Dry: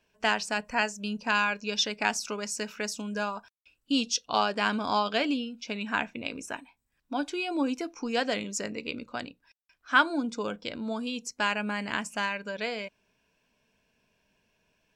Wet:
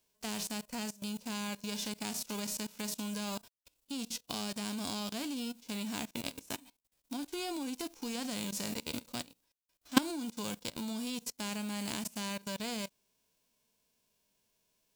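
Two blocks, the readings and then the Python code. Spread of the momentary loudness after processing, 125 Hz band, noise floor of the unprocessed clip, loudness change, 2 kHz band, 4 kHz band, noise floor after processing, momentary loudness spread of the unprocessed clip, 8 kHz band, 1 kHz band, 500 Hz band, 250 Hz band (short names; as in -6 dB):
4 LU, -1.5 dB, -76 dBFS, -8.0 dB, -15.5 dB, -6.5 dB, -79 dBFS, 10 LU, -2.5 dB, -14.0 dB, -11.0 dB, -4.5 dB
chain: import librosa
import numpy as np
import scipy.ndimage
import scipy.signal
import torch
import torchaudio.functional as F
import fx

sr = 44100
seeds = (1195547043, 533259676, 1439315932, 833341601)

y = fx.envelope_flatten(x, sr, power=0.3)
y = fx.peak_eq(y, sr, hz=1600.0, db=-9.0, octaves=1.5)
y = fx.level_steps(y, sr, step_db=20)
y = y * librosa.db_to_amplitude(2.5)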